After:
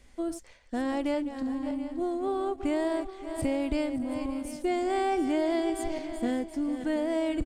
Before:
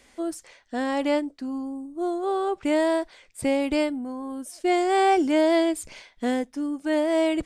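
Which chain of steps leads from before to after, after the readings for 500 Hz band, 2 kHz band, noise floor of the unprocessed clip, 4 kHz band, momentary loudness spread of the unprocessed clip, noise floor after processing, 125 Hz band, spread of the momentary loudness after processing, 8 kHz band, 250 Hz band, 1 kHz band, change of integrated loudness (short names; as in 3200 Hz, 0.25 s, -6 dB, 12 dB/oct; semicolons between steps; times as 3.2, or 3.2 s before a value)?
-6.0 dB, -8.0 dB, -58 dBFS, -8.0 dB, 13 LU, -54 dBFS, n/a, 7 LU, -6.0 dB, -3.5 dB, -7.5 dB, -5.5 dB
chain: regenerating reverse delay 0.285 s, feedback 47%, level -11.5 dB; low shelf 66 Hz +10.5 dB; in parallel at -7.5 dB: crossover distortion -43.5 dBFS; on the sum: low shelf 200 Hz +10.5 dB; compressor 2:1, threshold -21 dBFS, peak gain reduction 6 dB; echo 0.73 s -14 dB; gain -7 dB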